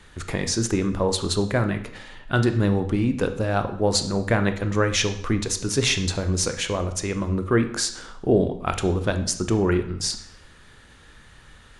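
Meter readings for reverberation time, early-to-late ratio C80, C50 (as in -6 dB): 0.65 s, 14.0 dB, 11.0 dB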